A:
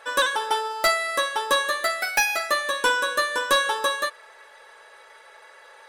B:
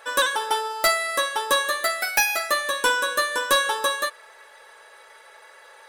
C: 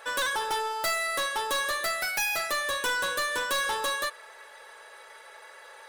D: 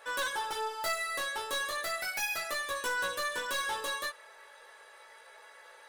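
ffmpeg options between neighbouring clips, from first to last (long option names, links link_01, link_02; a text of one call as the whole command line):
ffmpeg -i in.wav -af "highshelf=frequency=10000:gain=9" out.wav
ffmpeg -i in.wav -af "asoftclip=type=tanh:threshold=-25dB" out.wav
ffmpeg -i in.wav -af "flanger=delay=16:depth=5.2:speed=0.35,volume=-2.5dB" out.wav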